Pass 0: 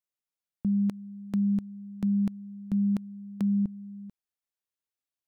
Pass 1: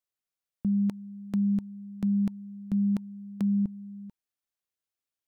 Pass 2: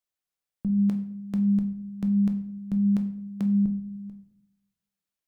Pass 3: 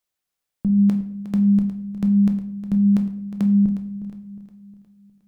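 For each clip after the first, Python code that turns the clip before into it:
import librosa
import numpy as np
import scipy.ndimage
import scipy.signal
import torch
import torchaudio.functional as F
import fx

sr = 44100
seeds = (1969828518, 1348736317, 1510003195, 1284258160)

y1 = fx.notch(x, sr, hz=910.0, q=21.0)
y2 = fx.room_shoebox(y1, sr, seeds[0], volume_m3=120.0, walls='mixed', distance_m=0.42)
y3 = fx.echo_feedback(y2, sr, ms=360, feedback_pct=46, wet_db=-13.0)
y3 = F.gain(torch.from_numpy(y3), 6.5).numpy()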